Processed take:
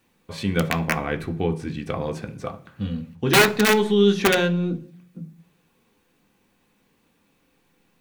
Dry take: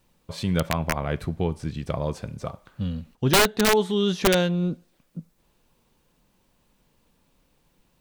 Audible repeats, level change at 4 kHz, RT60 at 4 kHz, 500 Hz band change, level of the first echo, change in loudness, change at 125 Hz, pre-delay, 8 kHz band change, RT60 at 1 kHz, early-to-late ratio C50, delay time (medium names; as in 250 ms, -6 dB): no echo, +1.5 dB, 0.50 s, +3.0 dB, no echo, +2.5 dB, +0.5 dB, 3 ms, 0.0 dB, 0.40 s, 17.5 dB, no echo